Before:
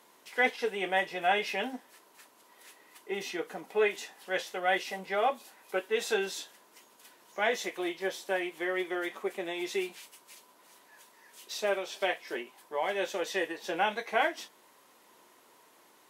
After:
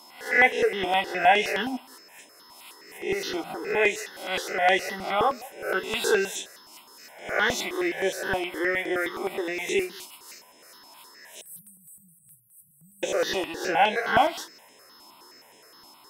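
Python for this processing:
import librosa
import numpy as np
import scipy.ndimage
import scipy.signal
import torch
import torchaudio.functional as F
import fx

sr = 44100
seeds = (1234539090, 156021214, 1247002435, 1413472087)

p1 = fx.spec_swells(x, sr, rise_s=0.53)
p2 = p1 + 10.0 ** (-58.0 / 20.0) * np.sin(2.0 * np.pi * 5200.0 * np.arange(len(p1)) / sr)
p3 = fx.brickwall_bandstop(p2, sr, low_hz=180.0, high_hz=7900.0, at=(11.41, 13.03))
p4 = p3 + fx.echo_single(p3, sr, ms=178, db=-23.5, dry=0)
p5 = fx.phaser_held(p4, sr, hz=9.6, low_hz=470.0, high_hz=4600.0)
y = p5 * 10.0 ** (8.0 / 20.0)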